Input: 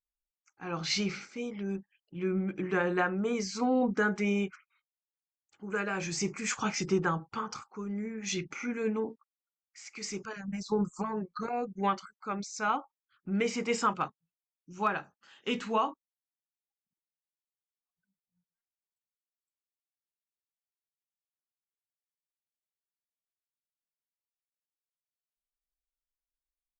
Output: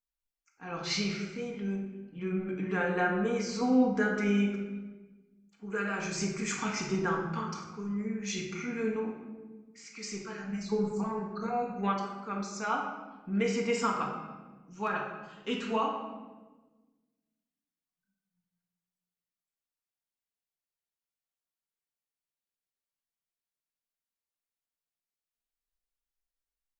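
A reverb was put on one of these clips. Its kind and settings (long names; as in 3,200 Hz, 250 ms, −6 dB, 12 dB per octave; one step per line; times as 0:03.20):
rectangular room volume 880 cubic metres, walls mixed, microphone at 1.7 metres
level −4 dB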